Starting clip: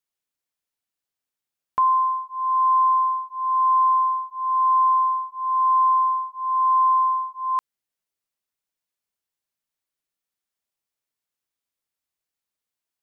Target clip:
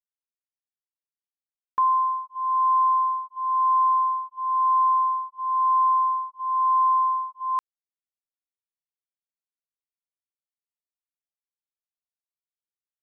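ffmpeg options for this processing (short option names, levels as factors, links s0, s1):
-af "agate=range=0.355:threshold=0.0251:ratio=16:detection=peak,anlmdn=0.0631,volume=0.794"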